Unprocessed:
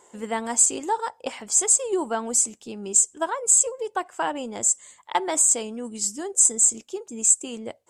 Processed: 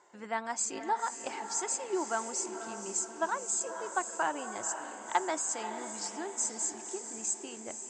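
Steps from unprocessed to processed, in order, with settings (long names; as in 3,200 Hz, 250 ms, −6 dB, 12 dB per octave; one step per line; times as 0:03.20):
loudspeaker in its box 130–5,900 Hz, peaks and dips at 130 Hz −5 dB, 240 Hz −9 dB, 470 Hz −9 dB, 1,500 Hz +4 dB, 3,200 Hz −7 dB
mains-hum notches 50/100/150/200 Hz
on a send: feedback delay with all-pass diffusion 520 ms, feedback 56%, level −8.5 dB
on the sum: level −5 dB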